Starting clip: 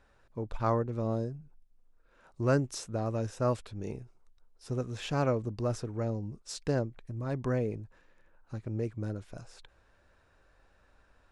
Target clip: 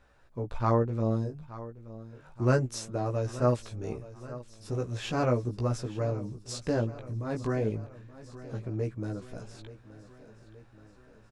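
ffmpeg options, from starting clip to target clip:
-filter_complex "[0:a]flanger=delay=15.5:depth=3.3:speed=0.34,asplit=2[a][b];[b]aecho=0:1:876|1752|2628|3504|4380:0.15|0.0868|0.0503|0.0292|0.0169[c];[a][c]amix=inputs=2:normalize=0,volume=5dB"

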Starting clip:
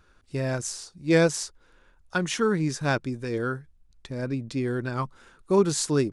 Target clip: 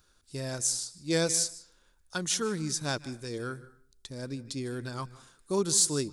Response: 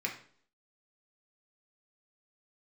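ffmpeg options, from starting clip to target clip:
-filter_complex "[0:a]asplit=2[a][b];[1:a]atrim=start_sample=2205,adelay=150[c];[b][c]afir=irnorm=-1:irlink=0,volume=-19.5dB[d];[a][d]amix=inputs=2:normalize=0,aexciter=amount=3.9:drive=5.6:freq=3.4k,volume=-8dB"

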